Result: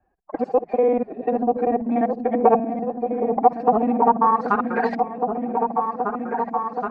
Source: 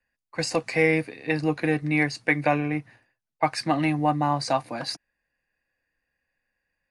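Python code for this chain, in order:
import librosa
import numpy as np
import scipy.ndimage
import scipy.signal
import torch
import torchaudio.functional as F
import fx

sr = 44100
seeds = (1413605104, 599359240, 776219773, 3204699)

p1 = fx.local_reverse(x, sr, ms=49.0)
p2 = fx.filter_sweep_lowpass(p1, sr, from_hz=720.0, to_hz=6900.0, start_s=3.84, end_s=6.21, q=5.7)
p3 = fx.pitch_keep_formants(p2, sr, semitones=7.5)
p4 = p3 + fx.echo_opening(p3, sr, ms=774, hz=400, octaves=2, feedback_pct=70, wet_db=-6, dry=0)
y = fx.band_squash(p4, sr, depth_pct=40)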